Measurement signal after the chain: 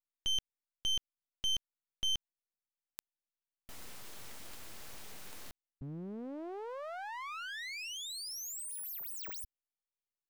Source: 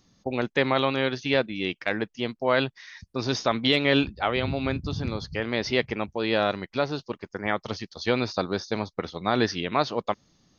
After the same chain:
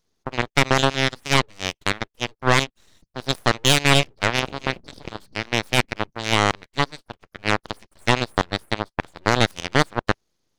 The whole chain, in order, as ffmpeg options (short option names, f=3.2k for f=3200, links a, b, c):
-af "aeval=exprs='abs(val(0))':c=same,aeval=exprs='0.473*(cos(1*acos(clip(val(0)/0.473,-1,1)))-cos(1*PI/2))+0.0376*(cos(5*acos(clip(val(0)/0.473,-1,1)))-cos(5*PI/2))+0.106*(cos(7*acos(clip(val(0)/0.473,-1,1)))-cos(7*PI/2))':c=same,volume=6.5dB"